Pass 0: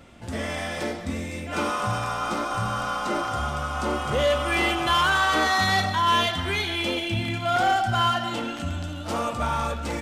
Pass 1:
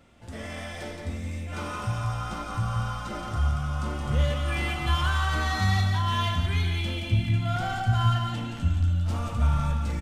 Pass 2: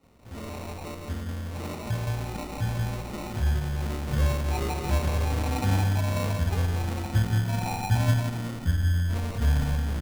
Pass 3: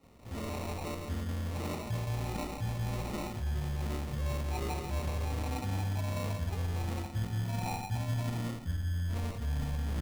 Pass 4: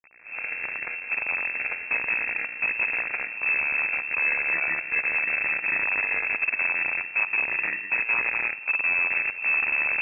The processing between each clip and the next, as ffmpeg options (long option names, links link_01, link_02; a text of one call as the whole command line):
ffmpeg -i in.wav -filter_complex "[0:a]asubboost=boost=10:cutoff=130,asplit=2[link_01][link_02];[link_02]aecho=0:1:40.82|172:0.282|0.562[link_03];[link_01][link_03]amix=inputs=2:normalize=0,volume=-8.5dB" out.wav
ffmpeg -i in.wav -filter_complex "[0:a]acrossover=split=1100[link_01][link_02];[link_01]adelay=30[link_03];[link_03][link_02]amix=inputs=2:normalize=0,acrusher=samples=27:mix=1:aa=0.000001" out.wav
ffmpeg -i in.wav -af "areverse,acompressor=threshold=-31dB:ratio=6,areverse,bandreject=frequency=1500:width=12" out.wav
ffmpeg -i in.wav -af "acrusher=bits=6:dc=4:mix=0:aa=0.000001,lowpass=frequency=2300:width_type=q:width=0.5098,lowpass=frequency=2300:width_type=q:width=0.6013,lowpass=frequency=2300:width_type=q:width=0.9,lowpass=frequency=2300:width_type=q:width=2.563,afreqshift=-2700,volume=7dB" out.wav